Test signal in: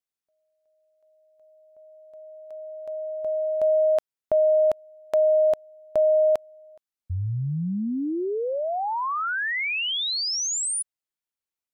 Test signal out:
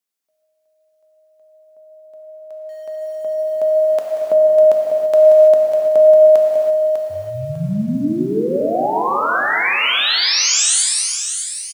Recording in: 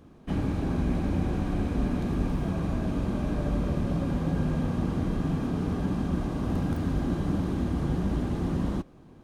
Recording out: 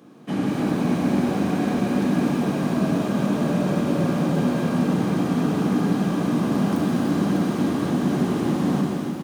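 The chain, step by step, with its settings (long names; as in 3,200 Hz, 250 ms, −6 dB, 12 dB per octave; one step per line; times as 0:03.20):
high-pass filter 150 Hz 24 dB per octave
high-shelf EQ 4,500 Hz +3.5 dB
repeating echo 599 ms, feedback 26%, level −7.5 dB
reverb whose tail is shaped and stops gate 360 ms flat, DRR −1.5 dB
feedback echo at a low word length 185 ms, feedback 35%, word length 7 bits, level −13.5 dB
level +4.5 dB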